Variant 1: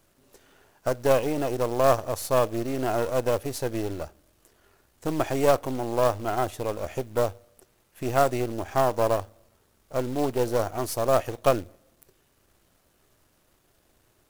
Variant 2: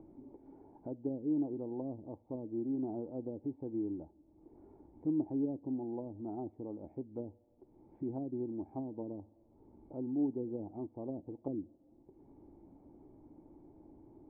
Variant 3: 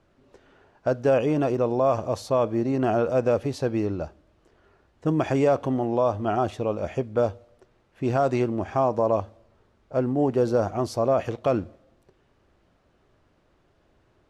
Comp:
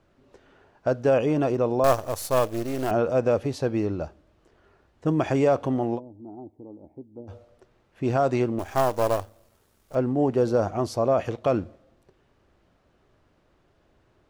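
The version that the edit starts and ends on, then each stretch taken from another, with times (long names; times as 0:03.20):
3
0:01.84–0:02.91: punch in from 1
0:05.97–0:07.30: punch in from 2, crossfade 0.06 s
0:08.59–0:09.95: punch in from 1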